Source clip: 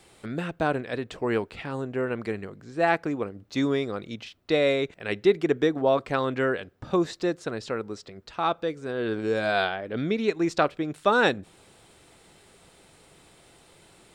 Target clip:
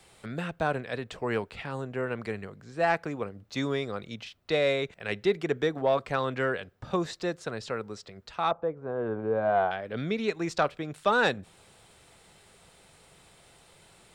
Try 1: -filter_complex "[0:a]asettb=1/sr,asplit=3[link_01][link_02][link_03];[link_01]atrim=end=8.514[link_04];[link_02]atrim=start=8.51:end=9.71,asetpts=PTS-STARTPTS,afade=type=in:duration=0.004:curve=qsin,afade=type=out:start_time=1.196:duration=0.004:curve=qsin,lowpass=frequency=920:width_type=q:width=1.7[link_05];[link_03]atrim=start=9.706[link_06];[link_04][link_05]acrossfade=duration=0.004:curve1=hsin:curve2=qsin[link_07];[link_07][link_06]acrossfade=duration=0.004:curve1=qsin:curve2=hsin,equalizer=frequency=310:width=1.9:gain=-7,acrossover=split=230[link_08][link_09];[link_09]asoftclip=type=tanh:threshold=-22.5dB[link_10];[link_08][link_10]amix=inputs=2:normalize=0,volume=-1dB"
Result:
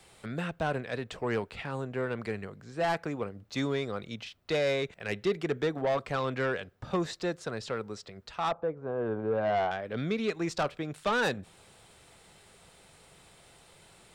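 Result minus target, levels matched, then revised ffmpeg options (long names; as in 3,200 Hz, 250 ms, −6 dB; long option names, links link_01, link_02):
soft clipping: distortion +12 dB
-filter_complex "[0:a]asettb=1/sr,asplit=3[link_01][link_02][link_03];[link_01]atrim=end=8.514[link_04];[link_02]atrim=start=8.51:end=9.71,asetpts=PTS-STARTPTS,afade=type=in:duration=0.004:curve=qsin,afade=type=out:start_time=1.196:duration=0.004:curve=qsin,lowpass=frequency=920:width_type=q:width=1.7[link_05];[link_03]atrim=start=9.706[link_06];[link_04][link_05]acrossfade=duration=0.004:curve1=hsin:curve2=qsin[link_07];[link_07][link_06]acrossfade=duration=0.004:curve1=qsin:curve2=hsin,equalizer=frequency=310:width=1.9:gain=-7,acrossover=split=230[link_08][link_09];[link_09]asoftclip=type=tanh:threshold=-12dB[link_10];[link_08][link_10]amix=inputs=2:normalize=0,volume=-1dB"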